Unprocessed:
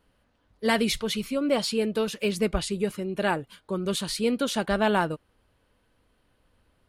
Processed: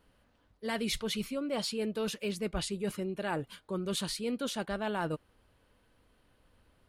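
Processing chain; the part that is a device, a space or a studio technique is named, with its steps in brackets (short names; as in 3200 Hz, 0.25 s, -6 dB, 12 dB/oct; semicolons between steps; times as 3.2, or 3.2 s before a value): compression on the reversed sound (reverse; compressor 6:1, threshold -31 dBFS, peak gain reduction 12.5 dB; reverse)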